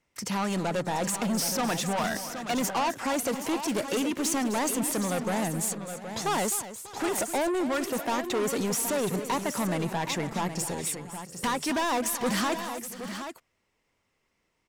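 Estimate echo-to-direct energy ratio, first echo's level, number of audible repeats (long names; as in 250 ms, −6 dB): −7.0 dB, −13.0 dB, 4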